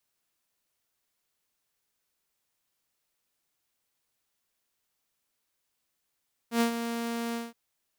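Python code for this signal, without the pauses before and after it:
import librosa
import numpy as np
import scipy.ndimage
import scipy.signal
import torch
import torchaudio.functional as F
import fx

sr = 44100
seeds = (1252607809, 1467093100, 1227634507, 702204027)

y = fx.adsr_tone(sr, wave='saw', hz=233.0, attack_ms=94.0, decay_ms=105.0, sustain_db=-9.5, held_s=0.84, release_ms=182.0, level_db=-18.5)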